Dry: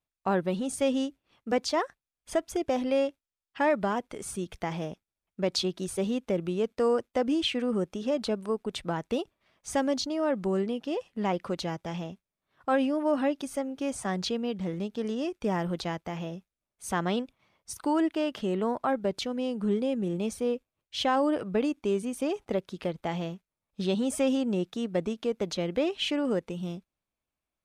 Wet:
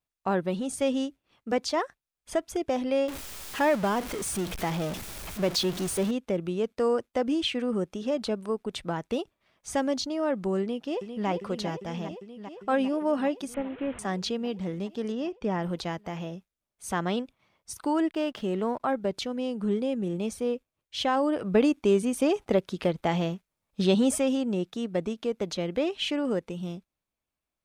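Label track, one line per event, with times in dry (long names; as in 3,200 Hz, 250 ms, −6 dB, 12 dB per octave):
3.080000	6.110000	converter with a step at zero of −31 dBFS
10.610000	11.280000	delay throw 400 ms, feedback 80%, level −8 dB
13.540000	13.990000	linear delta modulator 16 kbit/s, step −40 dBFS
15.120000	15.630000	high-frequency loss of the air 100 metres
18.100000	18.800000	slack as between gear wheels play −53 dBFS
21.440000	24.180000	clip gain +5.5 dB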